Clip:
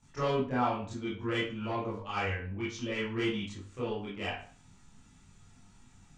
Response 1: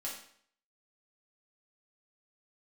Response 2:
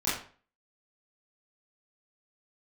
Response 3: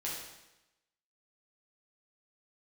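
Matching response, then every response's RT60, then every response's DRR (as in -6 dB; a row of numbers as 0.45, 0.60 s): 2; 0.60, 0.45, 0.95 s; -5.5, -11.5, -6.5 dB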